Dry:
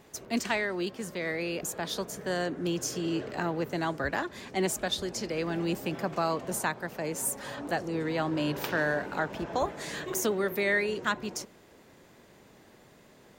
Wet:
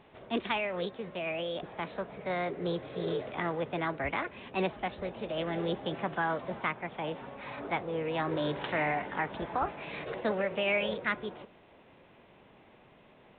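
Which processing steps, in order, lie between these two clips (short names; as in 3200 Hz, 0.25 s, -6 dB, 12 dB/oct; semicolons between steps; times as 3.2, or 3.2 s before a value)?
formant shift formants +4 st; gain -2 dB; µ-law 64 kbps 8000 Hz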